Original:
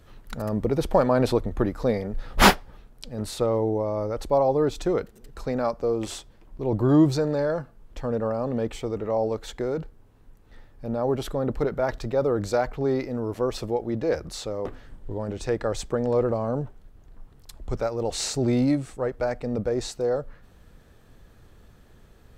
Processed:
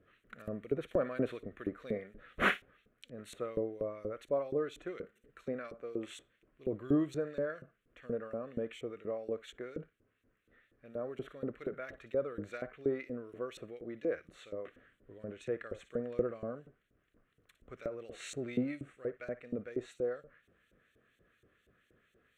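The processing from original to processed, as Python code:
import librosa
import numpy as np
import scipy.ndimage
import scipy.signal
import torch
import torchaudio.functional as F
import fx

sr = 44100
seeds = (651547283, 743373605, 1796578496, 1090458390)

p1 = fx.hpss(x, sr, part='percussive', gain_db=-3)
p2 = p1 + fx.room_flutter(p1, sr, wall_m=9.9, rt60_s=0.21, dry=0)
p3 = fx.filter_lfo_bandpass(p2, sr, shape='saw_up', hz=4.2, low_hz=410.0, high_hz=5400.0, q=0.92)
p4 = fx.fixed_phaser(p3, sr, hz=2100.0, stages=4)
y = F.gain(torch.from_numpy(p4), -2.0).numpy()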